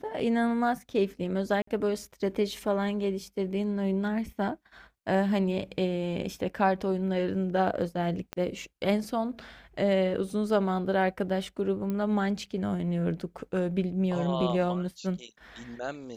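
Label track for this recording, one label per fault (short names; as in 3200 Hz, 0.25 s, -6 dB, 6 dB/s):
1.620000	1.670000	gap 54 ms
8.330000	8.330000	pop -19 dBFS
11.900000	11.900000	pop -21 dBFS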